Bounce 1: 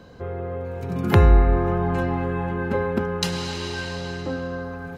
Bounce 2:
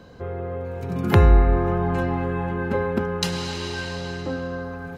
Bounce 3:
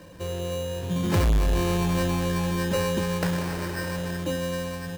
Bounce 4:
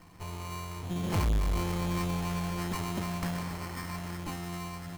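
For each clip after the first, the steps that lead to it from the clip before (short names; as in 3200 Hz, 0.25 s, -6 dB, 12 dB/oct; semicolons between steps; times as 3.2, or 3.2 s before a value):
nothing audible
ripple EQ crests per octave 1.2, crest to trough 12 dB; sample-and-hold 13×; soft clip -15.5 dBFS, distortion -6 dB; gain -2 dB
minimum comb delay 0.94 ms; gain -6 dB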